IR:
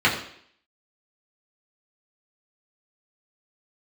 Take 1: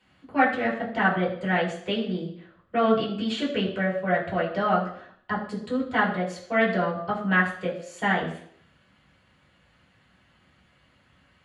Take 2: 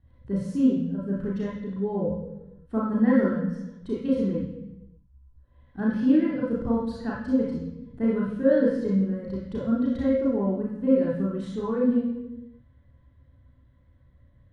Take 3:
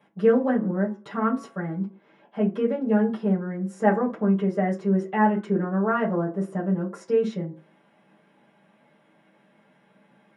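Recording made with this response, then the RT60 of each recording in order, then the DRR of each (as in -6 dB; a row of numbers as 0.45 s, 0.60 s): 1; 0.60 s, 0.95 s, 0.40 s; -6.0 dB, -8.0 dB, -7.5 dB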